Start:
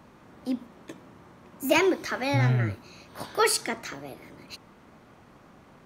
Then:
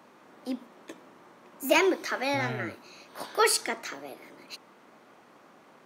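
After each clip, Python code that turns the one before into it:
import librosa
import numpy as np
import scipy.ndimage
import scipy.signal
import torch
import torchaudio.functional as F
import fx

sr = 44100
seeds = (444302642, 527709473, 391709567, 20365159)

y = scipy.signal.sosfilt(scipy.signal.butter(2, 300.0, 'highpass', fs=sr, output='sos'), x)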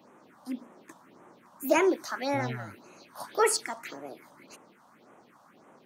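y = fx.phaser_stages(x, sr, stages=4, low_hz=360.0, high_hz=4600.0, hz=1.8, feedback_pct=20)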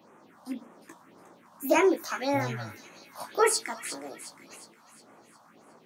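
y = fx.doubler(x, sr, ms=18.0, db=-6.0)
y = fx.echo_wet_highpass(y, sr, ms=360, feedback_pct=49, hz=2900.0, wet_db=-10.0)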